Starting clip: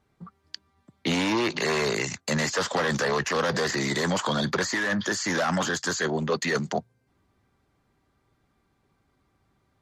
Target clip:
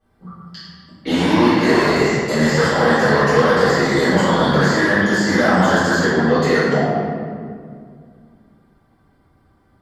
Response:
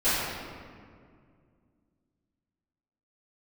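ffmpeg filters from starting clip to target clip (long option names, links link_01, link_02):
-filter_complex "[0:a]equalizer=frequency=2500:width_type=o:width=0.33:gain=-9,equalizer=frequency=4000:width_type=o:width=0.33:gain=-4,equalizer=frequency=6300:width_type=o:width=0.33:gain=-8[link_01];[1:a]atrim=start_sample=2205[link_02];[link_01][link_02]afir=irnorm=-1:irlink=0,volume=-4dB"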